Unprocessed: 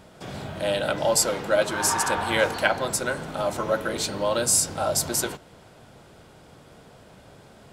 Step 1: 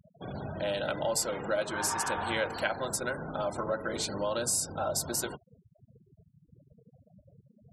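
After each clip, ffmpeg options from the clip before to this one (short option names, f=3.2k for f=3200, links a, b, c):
-af "afftfilt=real='re*gte(hypot(re,im),0.0178)':imag='im*gte(hypot(re,im),0.0178)':win_size=1024:overlap=0.75,acompressor=threshold=-29dB:ratio=2,volume=-2.5dB"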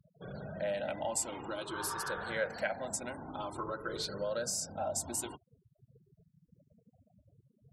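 -af "afftfilt=real='re*pow(10,11/40*sin(2*PI*(0.61*log(max(b,1)*sr/1024/100)/log(2)-(0.51)*(pts-256)/sr)))':imag='im*pow(10,11/40*sin(2*PI*(0.61*log(max(b,1)*sr/1024/100)/log(2)-(0.51)*(pts-256)/sr)))':win_size=1024:overlap=0.75,volume=-7dB"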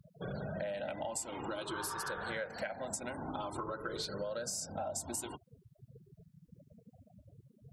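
-af "acompressor=threshold=-43dB:ratio=6,volume=6.5dB"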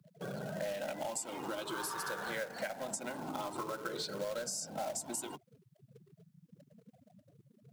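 -filter_complex "[0:a]highpass=f=140:w=0.5412,highpass=f=140:w=1.3066,acrossover=split=350|2900[a][b][c];[b]acrusher=bits=2:mode=log:mix=0:aa=0.000001[d];[a][d][c]amix=inputs=3:normalize=0"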